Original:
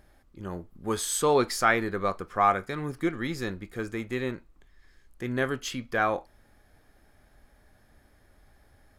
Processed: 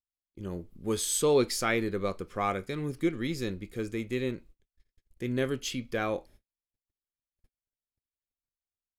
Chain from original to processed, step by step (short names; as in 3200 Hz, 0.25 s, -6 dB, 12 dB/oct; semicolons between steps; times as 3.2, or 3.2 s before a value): gate -51 dBFS, range -47 dB; band shelf 1100 Hz -9 dB